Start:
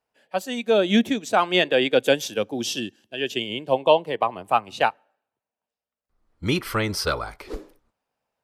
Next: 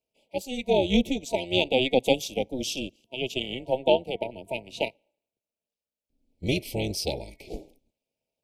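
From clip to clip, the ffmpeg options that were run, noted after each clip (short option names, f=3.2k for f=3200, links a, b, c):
-af "afftfilt=real='re*(1-between(b*sr/4096,680,2200))':imag='im*(1-between(b*sr/4096,680,2200))':win_size=4096:overlap=0.75,tremolo=f=260:d=0.75"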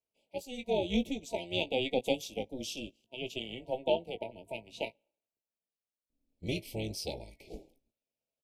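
-filter_complex "[0:a]asplit=2[a][b];[b]adelay=18,volume=-10dB[c];[a][c]amix=inputs=2:normalize=0,volume=-9dB"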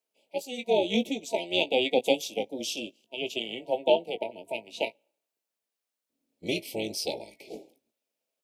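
-af "highpass=260,volume=7dB"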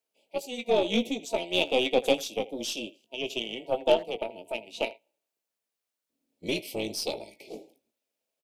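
-filter_complex "[0:a]asplit=2[a][b];[b]adelay=80,highpass=300,lowpass=3.4k,asoftclip=type=hard:threshold=-17.5dB,volume=-18dB[c];[a][c]amix=inputs=2:normalize=0,aeval=exprs='0.422*(cos(1*acos(clip(val(0)/0.422,-1,1)))-cos(1*PI/2))+0.0188*(cos(6*acos(clip(val(0)/0.422,-1,1)))-cos(6*PI/2))+0.0266*(cos(8*acos(clip(val(0)/0.422,-1,1)))-cos(8*PI/2))':c=same"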